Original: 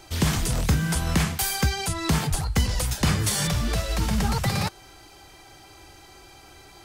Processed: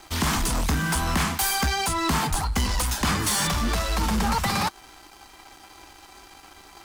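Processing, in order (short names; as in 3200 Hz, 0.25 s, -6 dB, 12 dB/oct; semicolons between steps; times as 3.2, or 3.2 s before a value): graphic EQ 125/250/500/1000 Hz -12/+6/-6/+8 dB; sample leveller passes 3; gain -7.5 dB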